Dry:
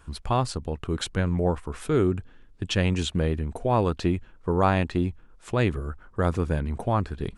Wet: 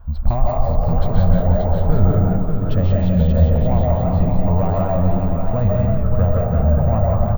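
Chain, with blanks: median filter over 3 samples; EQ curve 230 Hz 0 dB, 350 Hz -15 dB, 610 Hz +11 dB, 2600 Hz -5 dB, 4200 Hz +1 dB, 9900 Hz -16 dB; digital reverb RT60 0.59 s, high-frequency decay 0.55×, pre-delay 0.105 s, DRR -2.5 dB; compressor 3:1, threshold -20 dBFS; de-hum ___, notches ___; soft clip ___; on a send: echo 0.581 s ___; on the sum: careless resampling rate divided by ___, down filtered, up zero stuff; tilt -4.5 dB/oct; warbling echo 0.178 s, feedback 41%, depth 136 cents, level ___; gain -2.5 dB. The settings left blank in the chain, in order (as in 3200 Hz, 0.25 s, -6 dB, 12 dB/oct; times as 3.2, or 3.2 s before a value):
64.83 Hz, 28, -17.5 dBFS, -5.5 dB, 2×, -4.5 dB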